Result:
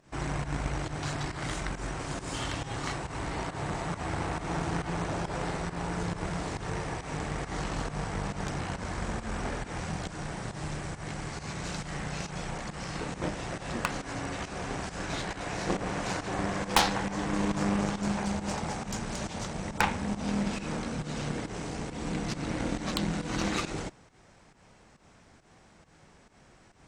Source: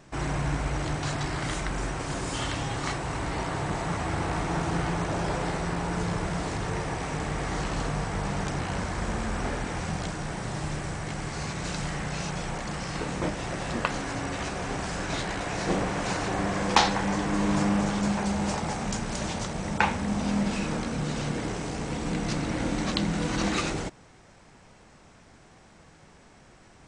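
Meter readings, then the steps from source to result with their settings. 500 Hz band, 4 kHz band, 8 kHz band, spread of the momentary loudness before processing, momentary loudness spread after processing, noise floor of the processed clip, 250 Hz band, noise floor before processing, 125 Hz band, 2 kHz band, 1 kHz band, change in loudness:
-4.0 dB, -3.5 dB, -3.5 dB, 6 LU, 7 LU, -58 dBFS, -4.0 dB, -54 dBFS, -4.0 dB, -3.5 dB, -4.0 dB, -4.0 dB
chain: volume shaper 137 bpm, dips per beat 1, -13 dB, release 137 ms; Chebyshev shaper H 6 -10 dB, 8 -17 dB, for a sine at -7 dBFS; trim -3.5 dB

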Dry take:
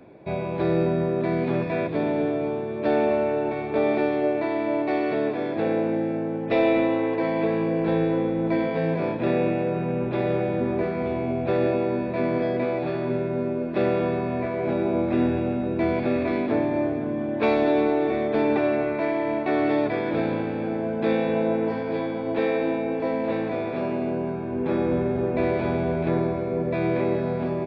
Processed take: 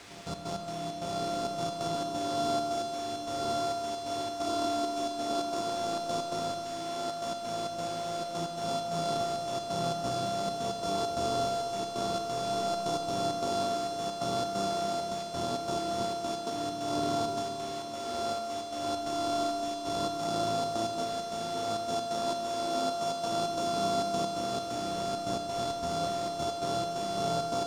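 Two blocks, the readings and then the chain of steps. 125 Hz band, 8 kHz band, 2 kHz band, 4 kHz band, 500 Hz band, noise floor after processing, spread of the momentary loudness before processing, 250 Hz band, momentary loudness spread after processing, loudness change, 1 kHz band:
-12.0 dB, no reading, -13.0 dB, +8.5 dB, -8.5 dB, -38 dBFS, 5 LU, -14.0 dB, 5 LU, -8.0 dB, -0.5 dB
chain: sorted samples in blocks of 64 samples; Chebyshev band-stop 1.2–3.8 kHz, order 2; treble shelf 4.1 kHz +9.5 dB; de-hum 85.65 Hz, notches 27; compressor with a negative ratio -26 dBFS, ratio -0.5; word length cut 6-bit, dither triangular; flange 0.46 Hz, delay 9.5 ms, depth 10 ms, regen +68%; trance gate "xxx.x.xx.x" 133 bpm; distance through air 100 m; on a send: reverse echo 353 ms -12.5 dB; on the sum: Schroeder reverb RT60 3.7 s, combs from 27 ms, DRR 4 dB; trim -4 dB

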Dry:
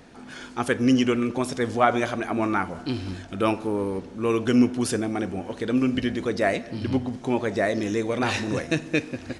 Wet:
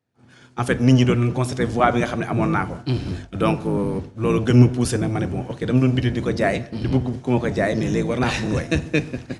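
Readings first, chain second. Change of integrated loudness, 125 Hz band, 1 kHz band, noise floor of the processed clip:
+4.0 dB, +12.5 dB, +2.0 dB, -49 dBFS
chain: octave divider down 1 oct, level +3 dB; high-pass 51 Hz; expander -29 dBFS; hum notches 50/100 Hz; trim +2 dB

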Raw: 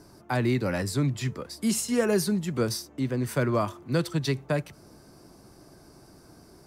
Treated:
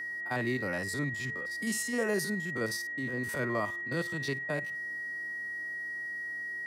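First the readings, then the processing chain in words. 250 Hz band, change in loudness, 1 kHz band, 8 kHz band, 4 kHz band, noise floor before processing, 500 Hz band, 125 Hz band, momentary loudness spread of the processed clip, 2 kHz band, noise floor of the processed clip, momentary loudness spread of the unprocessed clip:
-8.5 dB, -5.5 dB, -5.5 dB, -6.0 dB, -6.0 dB, -54 dBFS, -7.0 dB, -11.0 dB, 5 LU, +6.5 dB, -38 dBFS, 6 LU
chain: spectrogram pixelated in time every 50 ms; whistle 1.9 kHz -31 dBFS; bass shelf 170 Hz -10.5 dB; trim -4 dB

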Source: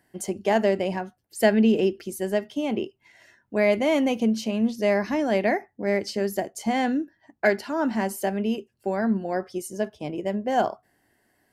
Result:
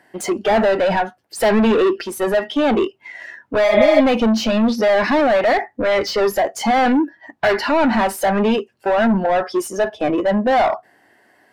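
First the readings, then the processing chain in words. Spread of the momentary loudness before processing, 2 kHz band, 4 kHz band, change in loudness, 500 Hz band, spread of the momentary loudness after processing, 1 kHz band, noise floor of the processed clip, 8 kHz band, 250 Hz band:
10 LU, +8.5 dB, +10.0 dB, +8.0 dB, +8.5 dB, 8 LU, +10.5 dB, -58 dBFS, +6.0 dB, +6.0 dB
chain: overdrive pedal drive 33 dB, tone 1.7 kHz, clips at -6 dBFS; spectral noise reduction 8 dB; spectral replace 3.71–3.98 s, 600–4100 Hz before; trim -1 dB

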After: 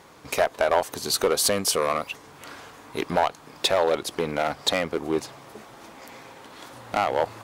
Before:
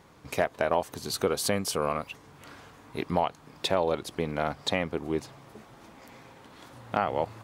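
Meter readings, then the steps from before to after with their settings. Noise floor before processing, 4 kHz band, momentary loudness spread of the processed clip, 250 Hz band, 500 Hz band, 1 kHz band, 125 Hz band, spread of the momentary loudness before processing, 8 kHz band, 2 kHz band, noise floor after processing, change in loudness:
-54 dBFS, +7.5 dB, 22 LU, +1.5 dB, +5.0 dB, +4.5 dB, -2.0 dB, 20 LU, +9.0 dB, +5.5 dB, -49 dBFS, +5.0 dB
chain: one-sided clip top -23 dBFS; tone controls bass -8 dB, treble +2 dB; trim +7 dB

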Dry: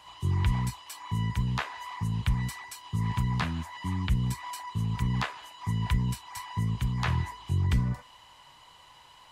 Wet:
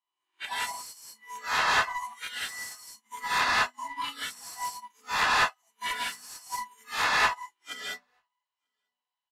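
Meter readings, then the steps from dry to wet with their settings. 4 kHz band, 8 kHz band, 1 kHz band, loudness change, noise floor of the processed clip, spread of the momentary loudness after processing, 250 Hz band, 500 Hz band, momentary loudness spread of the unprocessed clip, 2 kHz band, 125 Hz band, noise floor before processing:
+8.5 dB, +7.5 dB, +8.0 dB, +2.0 dB, under -85 dBFS, 18 LU, -16.5 dB, +6.0 dB, 8 LU, +11.5 dB, -28.0 dB, -55 dBFS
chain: reverse spectral sustain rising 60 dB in 0.78 s; Bessel high-pass 520 Hz, order 8; treble shelf 5.4 kHz +6.5 dB; gated-style reverb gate 230 ms rising, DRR -3.5 dB; spectral noise reduction 19 dB; overdrive pedal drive 19 dB, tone 3.6 kHz, clips at -14 dBFS; delay 940 ms -20.5 dB; resampled via 32 kHz; upward expansion 2.5:1, over -45 dBFS

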